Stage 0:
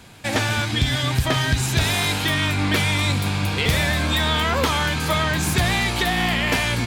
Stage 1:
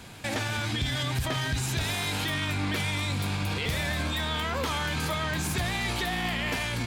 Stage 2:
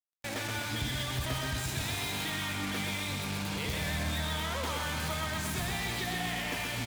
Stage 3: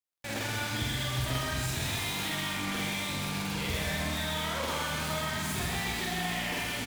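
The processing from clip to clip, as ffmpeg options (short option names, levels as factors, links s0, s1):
-af "alimiter=limit=0.0891:level=0:latency=1:release=80"
-af "aecho=1:1:127|254|381|508|635|762|889:0.631|0.328|0.171|0.0887|0.0461|0.024|0.0125,acrusher=bits=4:mix=0:aa=0.5,volume=0.473"
-af "aecho=1:1:46.65|78.72:1|0.355,volume=0.841"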